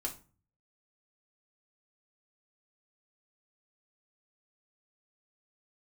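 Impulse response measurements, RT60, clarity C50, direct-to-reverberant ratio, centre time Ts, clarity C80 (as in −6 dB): 0.35 s, 12.5 dB, −0.5 dB, 14 ms, 19.0 dB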